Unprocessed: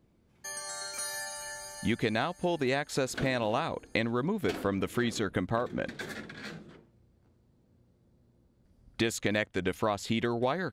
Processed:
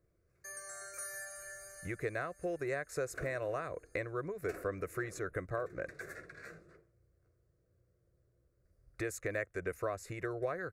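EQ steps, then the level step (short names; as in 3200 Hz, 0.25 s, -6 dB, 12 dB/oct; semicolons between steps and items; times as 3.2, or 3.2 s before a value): dynamic EQ 4400 Hz, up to -7 dB, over -54 dBFS, Q 2; fixed phaser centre 870 Hz, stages 6; -4.5 dB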